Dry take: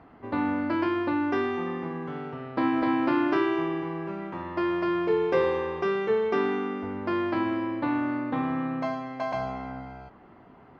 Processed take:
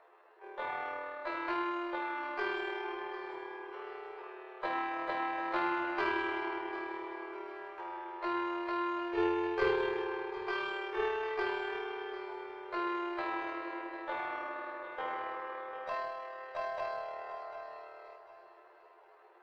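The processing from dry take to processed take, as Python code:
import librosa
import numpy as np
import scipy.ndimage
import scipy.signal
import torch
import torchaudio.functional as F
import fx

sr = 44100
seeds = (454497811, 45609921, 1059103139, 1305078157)

p1 = scipy.signal.sosfilt(scipy.signal.butter(16, 350.0, 'highpass', fs=sr, output='sos'), x)
p2 = fx.tilt_shelf(p1, sr, db=-4.5, hz=970.0)
p3 = fx.formant_shift(p2, sr, semitones=-2)
p4 = fx.tube_stage(p3, sr, drive_db=17.0, bias=0.45)
p5 = fx.stretch_grains(p4, sr, factor=1.8, grain_ms=52.0)
p6 = p5 + fx.echo_feedback(p5, sr, ms=747, feedback_pct=32, wet_db=-12.5, dry=0)
y = fx.upward_expand(p6, sr, threshold_db=-32.0, expansion=1.5)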